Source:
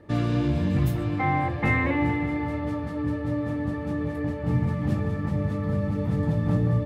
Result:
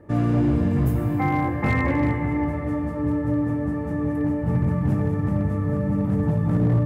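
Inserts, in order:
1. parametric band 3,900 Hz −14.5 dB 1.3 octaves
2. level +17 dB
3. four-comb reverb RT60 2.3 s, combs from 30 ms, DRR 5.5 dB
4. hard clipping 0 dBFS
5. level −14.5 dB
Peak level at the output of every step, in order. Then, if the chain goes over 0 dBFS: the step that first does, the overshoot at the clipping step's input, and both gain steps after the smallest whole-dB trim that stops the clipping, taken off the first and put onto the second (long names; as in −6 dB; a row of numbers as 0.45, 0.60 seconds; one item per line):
−12.5, +4.5, +6.5, 0.0, −14.5 dBFS
step 2, 6.5 dB
step 2 +10 dB, step 5 −7.5 dB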